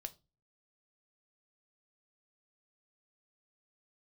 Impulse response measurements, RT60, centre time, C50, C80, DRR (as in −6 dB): 0.25 s, 4 ms, 21.0 dB, 28.0 dB, 8.0 dB